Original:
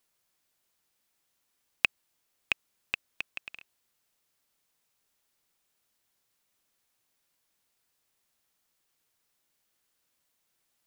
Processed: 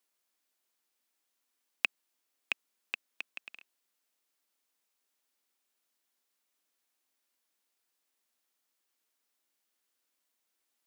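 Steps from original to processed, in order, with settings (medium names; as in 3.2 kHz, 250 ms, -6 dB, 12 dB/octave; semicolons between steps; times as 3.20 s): Chebyshev high-pass 240 Hz, order 3; trim -4.5 dB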